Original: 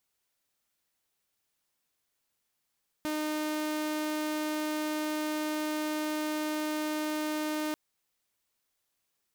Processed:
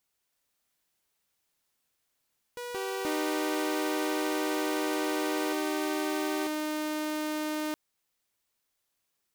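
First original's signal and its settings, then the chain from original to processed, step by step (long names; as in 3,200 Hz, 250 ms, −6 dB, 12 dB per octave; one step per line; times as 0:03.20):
tone saw 306 Hz −27.5 dBFS 4.69 s
delay with pitch and tempo change per echo 325 ms, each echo +4 semitones, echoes 2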